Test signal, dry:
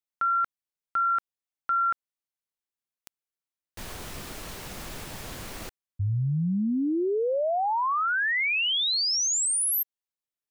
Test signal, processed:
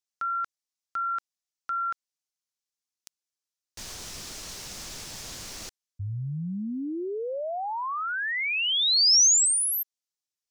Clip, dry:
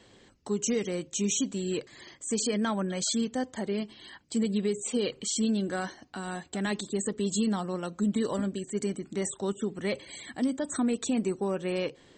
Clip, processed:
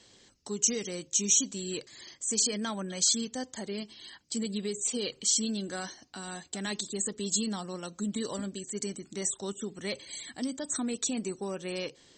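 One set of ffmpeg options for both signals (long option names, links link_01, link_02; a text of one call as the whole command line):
ffmpeg -i in.wav -af "equalizer=frequency=5800:width=0.8:gain=14,volume=-6dB" out.wav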